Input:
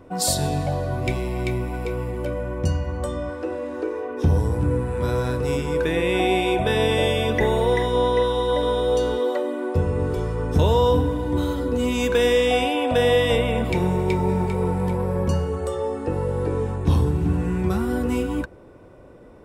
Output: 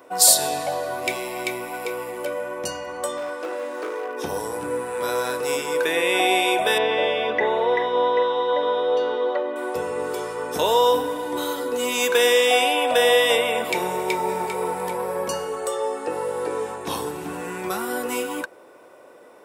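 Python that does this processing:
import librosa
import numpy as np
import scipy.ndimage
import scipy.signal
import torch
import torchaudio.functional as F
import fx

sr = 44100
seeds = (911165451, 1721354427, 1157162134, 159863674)

y = fx.overload_stage(x, sr, gain_db=24.5, at=(3.17, 4.17))
y = fx.air_absorb(y, sr, metres=310.0, at=(6.78, 9.56))
y = scipy.signal.sosfilt(scipy.signal.butter(2, 550.0, 'highpass', fs=sr, output='sos'), y)
y = fx.high_shelf(y, sr, hz=8700.0, db=11.5)
y = y * 10.0 ** (4.5 / 20.0)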